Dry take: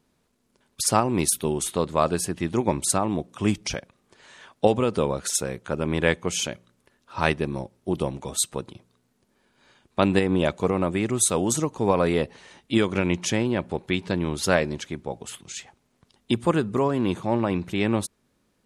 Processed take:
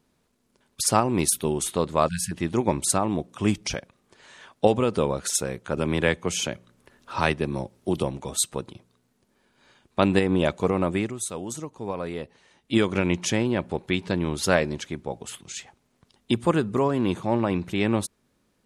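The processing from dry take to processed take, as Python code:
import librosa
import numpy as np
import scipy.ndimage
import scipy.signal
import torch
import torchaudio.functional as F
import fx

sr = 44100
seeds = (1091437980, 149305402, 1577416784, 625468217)

y = fx.spec_erase(x, sr, start_s=2.08, length_s=0.24, low_hz=230.0, high_hz=1400.0)
y = fx.band_squash(y, sr, depth_pct=40, at=(5.77, 8.03))
y = fx.edit(y, sr, fx.fade_down_up(start_s=10.99, length_s=1.76, db=-10.0, fade_s=0.15), tone=tone)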